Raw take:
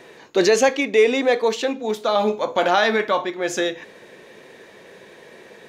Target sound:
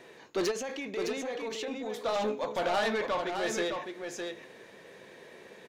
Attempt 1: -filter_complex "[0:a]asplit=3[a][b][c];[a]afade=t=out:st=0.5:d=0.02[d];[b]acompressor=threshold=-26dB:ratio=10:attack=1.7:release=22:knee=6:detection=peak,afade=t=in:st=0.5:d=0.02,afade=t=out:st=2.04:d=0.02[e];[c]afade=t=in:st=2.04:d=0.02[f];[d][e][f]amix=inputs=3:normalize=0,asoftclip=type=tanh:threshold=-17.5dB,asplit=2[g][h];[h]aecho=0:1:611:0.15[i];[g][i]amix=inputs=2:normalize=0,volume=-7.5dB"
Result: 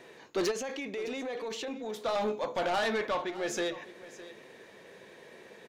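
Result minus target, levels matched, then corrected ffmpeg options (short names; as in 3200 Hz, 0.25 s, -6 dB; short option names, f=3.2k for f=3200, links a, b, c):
echo-to-direct -11 dB
-filter_complex "[0:a]asplit=3[a][b][c];[a]afade=t=out:st=0.5:d=0.02[d];[b]acompressor=threshold=-26dB:ratio=10:attack=1.7:release=22:knee=6:detection=peak,afade=t=in:st=0.5:d=0.02,afade=t=out:st=2.04:d=0.02[e];[c]afade=t=in:st=2.04:d=0.02[f];[d][e][f]amix=inputs=3:normalize=0,asoftclip=type=tanh:threshold=-17.5dB,asplit=2[g][h];[h]aecho=0:1:611:0.531[i];[g][i]amix=inputs=2:normalize=0,volume=-7.5dB"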